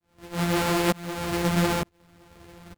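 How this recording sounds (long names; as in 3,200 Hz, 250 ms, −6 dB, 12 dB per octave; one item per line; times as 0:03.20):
a buzz of ramps at a fixed pitch in blocks of 256 samples
tremolo saw up 1.1 Hz, depth 100%
aliases and images of a low sample rate 5,900 Hz, jitter 20%
a shimmering, thickened sound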